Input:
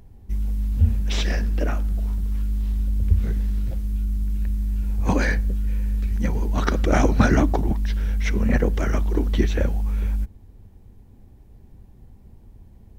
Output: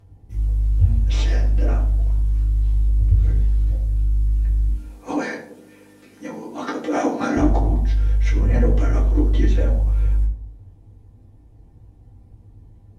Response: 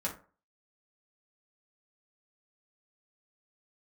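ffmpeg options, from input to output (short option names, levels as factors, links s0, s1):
-filter_complex "[0:a]asettb=1/sr,asplit=3[s0][s1][s2];[s0]atrim=end=4.694[s3];[s1]atrim=start=4.69:end=7.37,asetpts=PTS-STARTPTS,afade=t=in:d=0.004:c=qsin,afade=t=out:st=2.676:d=0.004:c=qsin,highpass=f=230:w=0.5412,highpass=f=230:w=1.3066[s4];[s2]atrim=start=7.366[s5];[s3][s4]acrossfade=d=0.004:c1=hsin:c2=qsin[s6];[s6][s5]acrossfade=d=0.004:c1=qsin:c2=hsin[s7];[1:a]atrim=start_sample=2205,asetrate=23814,aresample=44100[s8];[s7][s8]afir=irnorm=-1:irlink=0,volume=0.355"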